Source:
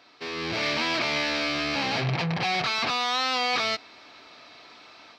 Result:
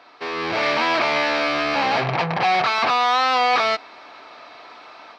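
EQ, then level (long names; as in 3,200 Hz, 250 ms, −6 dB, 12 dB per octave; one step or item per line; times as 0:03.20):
parametric band 900 Hz +14 dB 3 octaves
−3.0 dB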